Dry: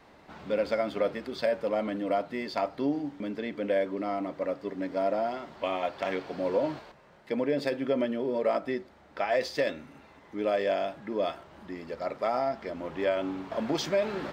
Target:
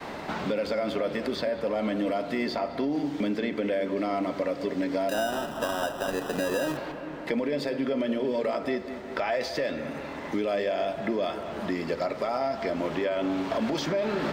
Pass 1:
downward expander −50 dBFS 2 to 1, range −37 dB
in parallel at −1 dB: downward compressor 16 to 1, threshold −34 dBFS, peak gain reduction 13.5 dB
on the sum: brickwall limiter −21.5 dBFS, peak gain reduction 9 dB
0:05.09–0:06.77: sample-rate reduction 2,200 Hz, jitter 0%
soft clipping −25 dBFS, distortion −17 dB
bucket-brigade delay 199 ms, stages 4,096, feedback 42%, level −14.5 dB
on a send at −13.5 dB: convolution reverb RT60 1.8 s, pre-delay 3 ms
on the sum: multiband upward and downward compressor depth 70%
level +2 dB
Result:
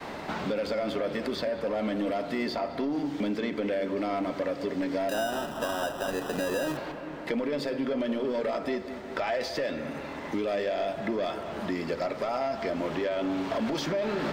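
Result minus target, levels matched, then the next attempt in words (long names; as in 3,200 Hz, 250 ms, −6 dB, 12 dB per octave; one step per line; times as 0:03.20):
soft clipping: distortion +14 dB
downward expander −50 dBFS 2 to 1, range −37 dB
in parallel at −1 dB: downward compressor 16 to 1, threshold −34 dBFS, peak gain reduction 13.5 dB
on the sum: brickwall limiter −21.5 dBFS, peak gain reduction 9 dB
0:05.09–0:06.77: sample-rate reduction 2,200 Hz, jitter 0%
soft clipping −16.5 dBFS, distortion −32 dB
bucket-brigade delay 199 ms, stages 4,096, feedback 42%, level −14.5 dB
on a send at −13.5 dB: convolution reverb RT60 1.8 s, pre-delay 3 ms
on the sum: multiband upward and downward compressor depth 70%
level +2 dB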